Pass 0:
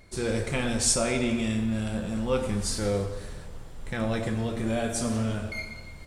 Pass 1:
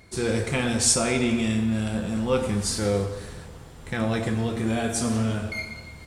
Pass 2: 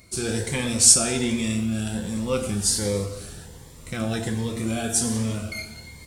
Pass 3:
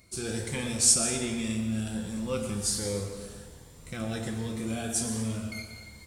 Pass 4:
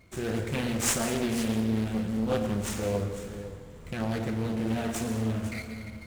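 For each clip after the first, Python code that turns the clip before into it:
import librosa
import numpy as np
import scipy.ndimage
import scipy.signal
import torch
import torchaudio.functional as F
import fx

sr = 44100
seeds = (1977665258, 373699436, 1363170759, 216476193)

y1 = scipy.signal.sosfilt(scipy.signal.butter(2, 56.0, 'highpass', fs=sr, output='sos'), x)
y1 = fx.notch(y1, sr, hz=580.0, q=12.0)
y1 = F.gain(torch.from_numpy(y1), 3.5).numpy()
y2 = fx.high_shelf(y1, sr, hz=4900.0, db=11.0)
y2 = fx.notch_cascade(y2, sr, direction='rising', hz=1.3)
y2 = F.gain(torch.from_numpy(y2), -1.0).numpy()
y3 = fx.rev_plate(y2, sr, seeds[0], rt60_s=1.3, hf_ratio=0.6, predelay_ms=105, drr_db=8.0)
y3 = F.gain(torch.from_numpy(y3), -7.0).numpy()
y4 = scipy.ndimage.median_filter(y3, 9, mode='constant')
y4 = y4 + 10.0 ** (-13.0 / 20.0) * np.pad(y4, (int(499 * sr / 1000.0), 0))[:len(y4)]
y4 = fx.doppler_dist(y4, sr, depth_ms=0.55)
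y4 = F.gain(torch.from_numpy(y4), 3.5).numpy()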